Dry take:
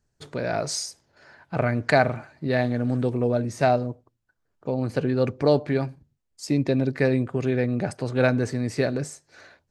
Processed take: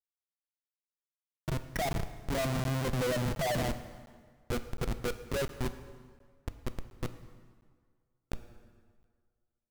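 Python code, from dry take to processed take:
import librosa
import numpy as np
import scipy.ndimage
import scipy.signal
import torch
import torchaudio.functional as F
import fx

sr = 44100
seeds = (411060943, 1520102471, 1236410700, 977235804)

p1 = fx.spec_expand(x, sr, power=2.7)
p2 = fx.doppler_pass(p1, sr, speed_mps=25, closest_m=17.0, pass_at_s=3.37)
p3 = scipy.signal.sosfilt(scipy.signal.cheby1(8, 1.0, 3700.0, 'lowpass', fs=sr, output='sos'), p2)
p4 = fx.hum_notches(p3, sr, base_hz=60, count=7)
p5 = p4 + fx.echo_single(p4, sr, ms=166, db=-14.0, dry=0)
p6 = fx.schmitt(p5, sr, flips_db=-30.0)
p7 = fx.rev_plate(p6, sr, seeds[0], rt60_s=1.8, hf_ratio=0.75, predelay_ms=0, drr_db=10.0)
p8 = fx.buffer_crackle(p7, sr, first_s=0.51, period_s=0.71, block=512, kind='zero')
y = p8 * 10.0 ** (2.0 / 20.0)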